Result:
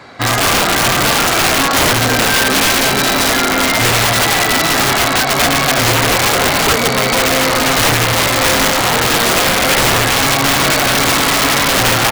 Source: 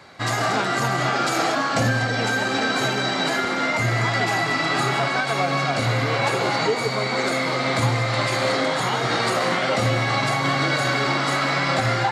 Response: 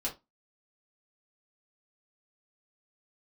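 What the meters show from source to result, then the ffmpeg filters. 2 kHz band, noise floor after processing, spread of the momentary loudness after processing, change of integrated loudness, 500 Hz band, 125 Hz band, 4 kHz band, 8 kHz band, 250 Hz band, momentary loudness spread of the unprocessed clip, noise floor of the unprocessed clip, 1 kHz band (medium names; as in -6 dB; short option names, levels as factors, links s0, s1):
+9.0 dB, -15 dBFS, 1 LU, +10.0 dB, +7.0 dB, +4.5 dB, +13.0 dB, +18.5 dB, +8.0 dB, 1 LU, -24 dBFS, +8.0 dB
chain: -filter_complex "[0:a]highshelf=f=3200:g=-5.5,asplit=2[s0][s1];[s1]adelay=250,highpass=300,lowpass=3400,asoftclip=type=hard:threshold=0.119,volume=0.251[s2];[s0][s2]amix=inputs=2:normalize=0,asplit=2[s3][s4];[1:a]atrim=start_sample=2205,atrim=end_sample=3087[s5];[s4][s5]afir=irnorm=-1:irlink=0,volume=0.422[s6];[s3][s6]amix=inputs=2:normalize=0,aeval=exprs='(mod(5.01*val(0)+1,2)-1)/5.01':c=same,volume=2.37"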